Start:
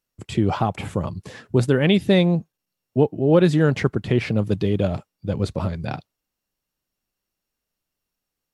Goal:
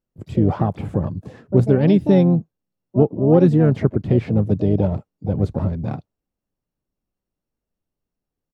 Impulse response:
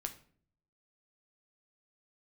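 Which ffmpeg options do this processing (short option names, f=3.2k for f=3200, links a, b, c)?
-filter_complex "[0:a]asplit=3[a][b][c];[b]asetrate=33038,aresample=44100,atempo=1.33484,volume=-17dB[d];[c]asetrate=66075,aresample=44100,atempo=0.66742,volume=-10dB[e];[a][d][e]amix=inputs=3:normalize=0,tiltshelf=f=1.1k:g=9.5,volume=-5.5dB"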